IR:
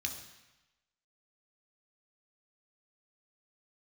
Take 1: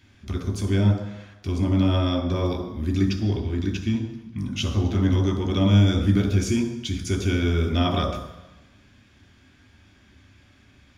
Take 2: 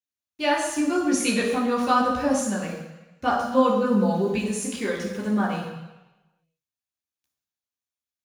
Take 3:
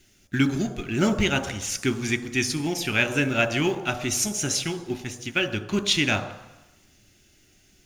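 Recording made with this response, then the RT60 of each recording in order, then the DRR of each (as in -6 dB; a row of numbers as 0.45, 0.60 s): 1; 1.0, 1.0, 1.0 s; 3.0, -5.0, 11.5 dB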